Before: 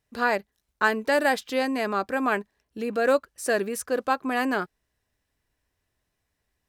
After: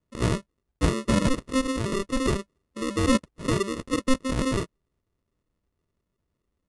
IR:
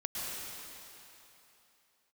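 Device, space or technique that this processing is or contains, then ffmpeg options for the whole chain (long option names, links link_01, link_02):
crushed at another speed: -af "asetrate=88200,aresample=44100,acrusher=samples=28:mix=1:aa=0.000001,asetrate=22050,aresample=44100"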